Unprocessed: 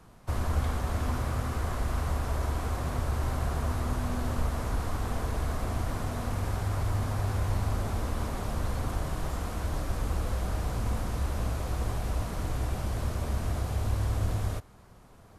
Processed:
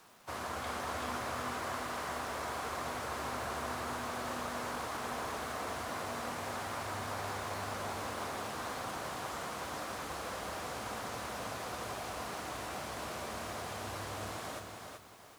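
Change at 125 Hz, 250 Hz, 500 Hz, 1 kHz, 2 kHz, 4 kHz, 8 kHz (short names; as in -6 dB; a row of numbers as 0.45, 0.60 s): -19.0, -8.0, -2.5, 0.0, +1.5, +1.5, -0.5 dB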